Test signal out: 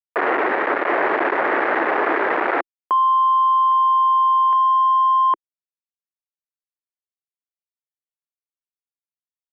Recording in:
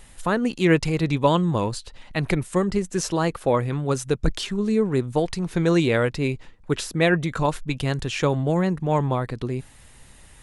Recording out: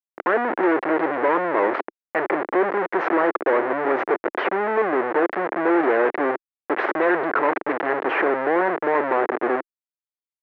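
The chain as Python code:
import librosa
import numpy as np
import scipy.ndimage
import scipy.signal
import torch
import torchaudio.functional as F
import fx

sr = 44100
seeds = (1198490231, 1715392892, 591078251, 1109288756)

y = fx.schmitt(x, sr, flips_db=-34.0)
y = scipy.signal.sosfilt(scipy.signal.ellip(3, 1.0, 70, [340.0, 1900.0], 'bandpass', fs=sr, output='sos'), y)
y = F.gain(torch.from_numpy(y), 8.0).numpy()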